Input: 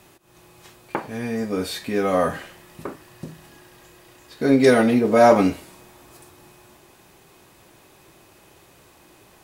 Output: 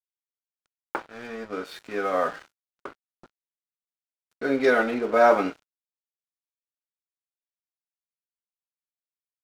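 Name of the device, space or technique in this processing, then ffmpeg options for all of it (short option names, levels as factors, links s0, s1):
pocket radio on a weak battery: -af "highpass=340,lowpass=3900,aeval=exprs='sgn(val(0))*max(abs(val(0))-0.0119,0)':c=same,equalizer=f=1400:t=o:w=0.27:g=9,volume=0.668"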